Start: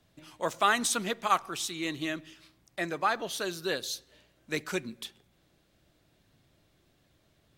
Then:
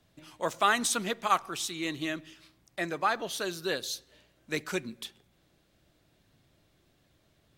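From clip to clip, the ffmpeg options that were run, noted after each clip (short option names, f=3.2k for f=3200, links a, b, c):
-af anull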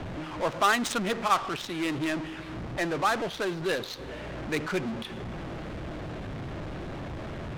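-af "aeval=exprs='val(0)+0.5*0.0376*sgn(val(0))':c=same,adynamicsmooth=sensitivity=4.5:basefreq=590"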